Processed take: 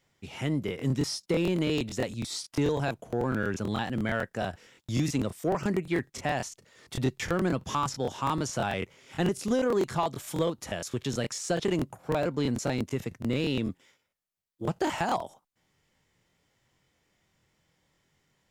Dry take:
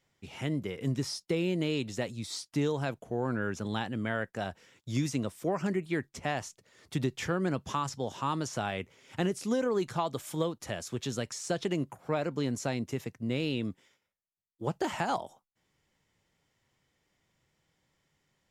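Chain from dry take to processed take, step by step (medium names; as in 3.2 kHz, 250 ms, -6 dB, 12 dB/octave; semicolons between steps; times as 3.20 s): in parallel at -6 dB: hard clipper -26.5 dBFS, distortion -12 dB; on the sum: crackling interface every 0.11 s, samples 1024, repeat, from 0.66 s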